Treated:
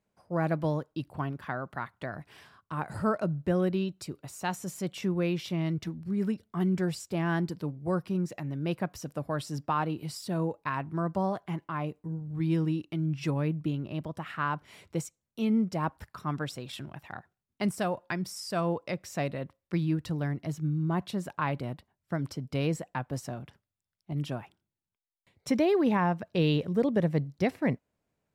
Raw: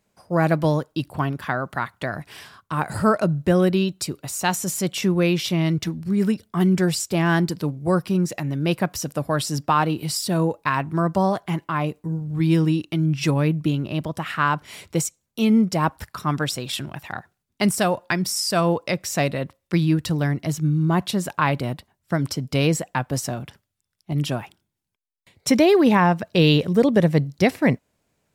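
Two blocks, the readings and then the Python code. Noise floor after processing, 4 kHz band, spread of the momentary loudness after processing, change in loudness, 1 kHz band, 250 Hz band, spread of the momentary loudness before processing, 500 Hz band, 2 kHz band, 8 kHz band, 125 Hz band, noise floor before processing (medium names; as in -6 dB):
under -85 dBFS, -14.0 dB, 11 LU, -9.5 dB, -10.0 dB, -9.0 dB, 10 LU, -9.0 dB, -11.0 dB, -16.5 dB, -9.0 dB, -78 dBFS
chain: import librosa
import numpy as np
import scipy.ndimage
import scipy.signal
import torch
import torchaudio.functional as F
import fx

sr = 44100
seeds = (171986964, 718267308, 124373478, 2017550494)

y = fx.high_shelf(x, sr, hz=3100.0, db=-8.5)
y = y * 10.0 ** (-9.0 / 20.0)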